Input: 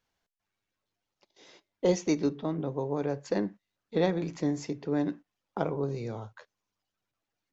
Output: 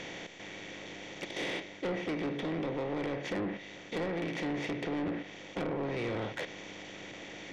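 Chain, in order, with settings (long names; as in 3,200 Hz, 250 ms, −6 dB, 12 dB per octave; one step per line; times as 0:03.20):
compressor on every frequency bin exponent 0.4
flat-topped bell 2,500 Hz +11 dB 1.2 octaves
speech leveller within 5 dB 0.5 s
treble cut that deepens with the level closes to 1,400 Hz, closed at −18 dBFS
soft clipping −24.5 dBFS, distortion −9 dB
level −5 dB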